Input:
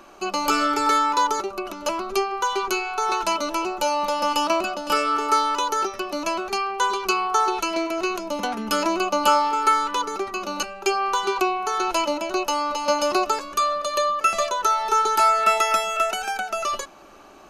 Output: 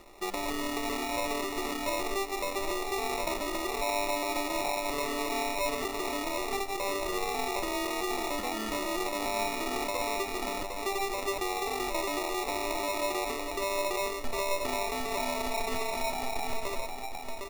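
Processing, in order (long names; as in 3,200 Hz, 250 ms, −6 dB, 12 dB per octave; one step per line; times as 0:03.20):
running median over 25 samples
low-shelf EQ 370 Hz +11 dB
notch filter 1,500 Hz
repeating echo 757 ms, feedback 32%, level −5.5 dB
decimation without filtering 28×
0:03.66–0:05.75: comb filter 7 ms, depth 83%
brickwall limiter −17.5 dBFS, peak gain reduction 11.5 dB
parametric band 170 Hz −12 dB 1.9 octaves
convolution reverb RT60 0.45 s, pre-delay 97 ms, DRR 14.5 dB
level −5 dB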